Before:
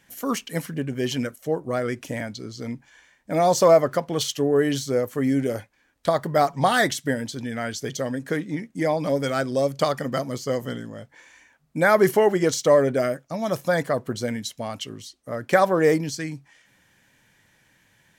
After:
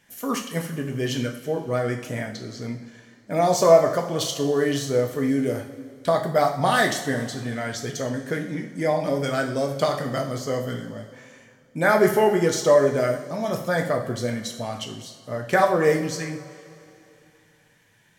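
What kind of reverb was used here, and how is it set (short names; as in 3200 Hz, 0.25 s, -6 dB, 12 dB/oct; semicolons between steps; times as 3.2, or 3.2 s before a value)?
two-slope reverb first 0.53 s, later 2.8 s, from -16 dB, DRR 2 dB; gain -2 dB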